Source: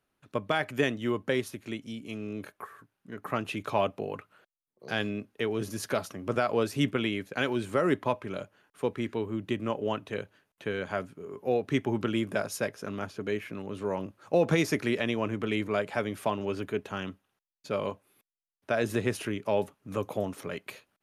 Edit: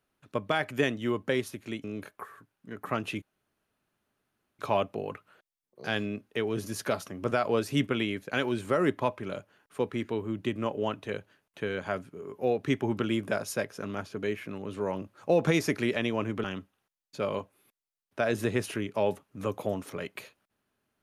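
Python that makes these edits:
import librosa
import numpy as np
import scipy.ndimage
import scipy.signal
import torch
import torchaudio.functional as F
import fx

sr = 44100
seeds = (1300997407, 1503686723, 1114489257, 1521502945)

y = fx.edit(x, sr, fx.cut(start_s=1.84, length_s=0.41),
    fx.insert_room_tone(at_s=3.63, length_s=1.37),
    fx.cut(start_s=15.48, length_s=1.47), tone=tone)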